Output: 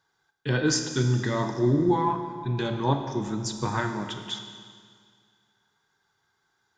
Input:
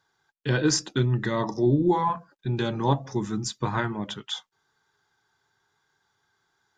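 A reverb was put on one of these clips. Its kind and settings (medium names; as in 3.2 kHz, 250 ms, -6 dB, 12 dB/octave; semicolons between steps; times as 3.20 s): Schroeder reverb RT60 2 s, combs from 25 ms, DRR 6 dB; trim -1.5 dB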